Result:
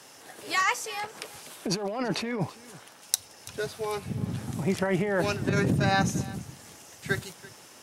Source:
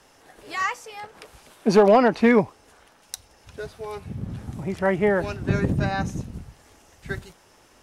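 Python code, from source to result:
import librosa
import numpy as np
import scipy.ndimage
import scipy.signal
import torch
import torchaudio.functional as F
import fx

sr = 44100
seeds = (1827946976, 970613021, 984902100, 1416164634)

p1 = scipy.signal.sosfilt(scipy.signal.butter(4, 100.0, 'highpass', fs=sr, output='sos'), x)
p2 = fx.high_shelf(p1, sr, hz=3300.0, db=8.5)
p3 = fx.over_compress(p2, sr, threshold_db=-24.0, ratio=-1.0)
p4 = p3 + fx.echo_single(p3, sr, ms=334, db=-20.0, dry=0)
y = p4 * 10.0 ** (-2.0 / 20.0)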